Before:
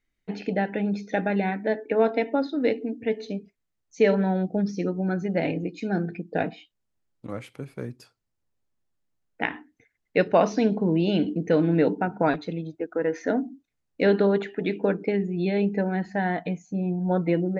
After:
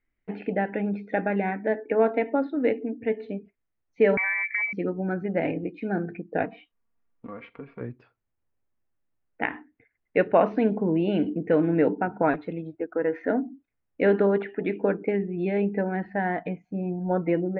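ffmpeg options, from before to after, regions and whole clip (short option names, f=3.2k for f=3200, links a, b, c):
-filter_complex "[0:a]asettb=1/sr,asplit=3[a][b][c];[a]atrim=end=4.174[d];[b]atrim=start=4.17:end=4.73,asetpts=PTS-STARTPTS,afade=t=in:d=0.004:c=qsin,afade=t=out:st=0.556:d=0.004:c=qsin,acompressor=threshold=-33dB:ratio=3:attack=3.2:release=140:knee=1:detection=peak,lowpass=f=2.1k:t=q:w=0.5098,lowpass=f=2.1k:t=q:w=0.6013,lowpass=f=2.1k:t=q:w=0.9,lowpass=f=2.1k:t=q:w=2.563,afreqshift=-2500,equalizer=f=840:w=0.37:g=14[e];[c]atrim=start=4.726[f];[d][e]acrossfade=d=0.004:c1=hsin:c2=qsin[g];[g][f]acrossfade=d=0.004:c1=qsin:c2=hsin,asettb=1/sr,asplit=3[h][i][j];[h]atrim=end=6.454[k];[i]atrim=start=6.45:end=7.81,asetpts=PTS-STARTPTS,afade=t=in:d=0.004:c=qsin,afade=t=out:st=1.356:d=0.004:c=qsin,equalizer=f=1.1k:w=5.1:g=7.5,aecho=1:1:4.3:0.69,atrim=end_sample=59976,acompressor=threshold=-35dB:ratio=3:attack=3.2:release=140:knee=1:detection=peak[l];[j]atrim=start=7.806[m];[k][l]acrossfade=d=0.004:c1=hsin:c2=qsin[n];[n][m]acrossfade=d=0.004:c1=qsin:c2=hsin,lowpass=f=2.5k:w=0.5412,lowpass=f=2.5k:w=1.3066,equalizer=f=170:w=3.4:g=-4.5"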